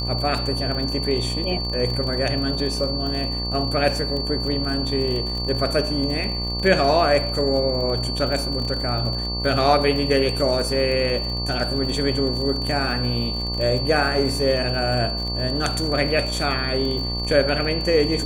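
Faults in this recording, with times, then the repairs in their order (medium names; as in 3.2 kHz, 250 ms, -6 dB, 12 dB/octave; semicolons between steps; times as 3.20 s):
buzz 60 Hz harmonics 20 -28 dBFS
crackle 51 per s -28 dBFS
whine 4.5 kHz -27 dBFS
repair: de-click; de-hum 60 Hz, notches 20; band-stop 4.5 kHz, Q 30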